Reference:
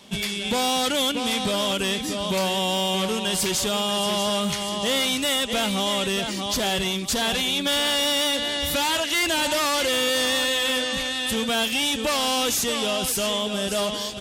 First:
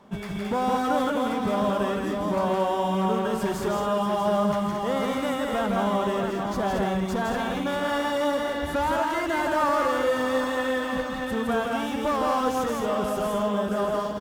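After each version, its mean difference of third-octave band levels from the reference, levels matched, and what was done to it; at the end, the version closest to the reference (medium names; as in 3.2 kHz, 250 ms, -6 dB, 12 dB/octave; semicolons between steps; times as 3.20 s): 8.0 dB: resonant high shelf 2 kHz -14 dB, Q 1.5; on a send: loudspeakers at several distances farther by 56 m -3 dB, 76 m -5 dB; on the sum: decimation joined by straight lines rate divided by 2×; trim -2 dB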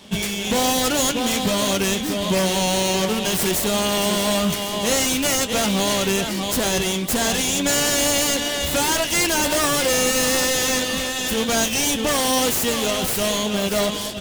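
4.5 dB: self-modulated delay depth 0.12 ms; flange 0.51 Hz, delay 9.6 ms, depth 3.3 ms, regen -56%; in parallel at -10 dB: sample-rate reducer 1.3 kHz; on the sum: trim +7.5 dB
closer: second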